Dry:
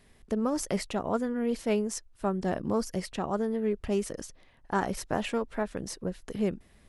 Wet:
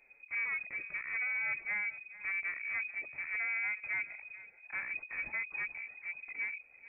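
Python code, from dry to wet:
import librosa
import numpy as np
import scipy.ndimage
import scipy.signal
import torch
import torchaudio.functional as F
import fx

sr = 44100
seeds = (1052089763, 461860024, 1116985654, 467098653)

p1 = fx.env_flanger(x, sr, rest_ms=8.2, full_db=-26.5)
p2 = np.clip(p1, -10.0 ** (-33.0 / 20.0), 10.0 ** (-33.0 / 20.0))
p3 = fx.hpss(p2, sr, part='percussive', gain_db=-11)
p4 = p3 + fx.echo_feedback(p3, sr, ms=438, feedback_pct=18, wet_db=-17.5, dry=0)
y = fx.freq_invert(p4, sr, carrier_hz=2500)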